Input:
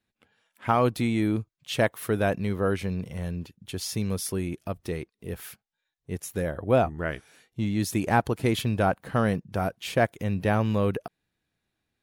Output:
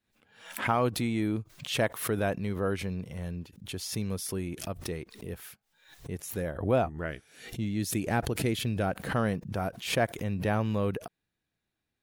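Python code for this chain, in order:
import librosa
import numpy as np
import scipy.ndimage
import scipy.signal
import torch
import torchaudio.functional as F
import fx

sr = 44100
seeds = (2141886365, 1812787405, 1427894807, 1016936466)

y = fx.peak_eq(x, sr, hz=980.0, db=-7.0, octaves=0.84, at=(7.06, 9.08))
y = fx.pre_swell(y, sr, db_per_s=100.0)
y = F.gain(torch.from_numpy(y), -4.5).numpy()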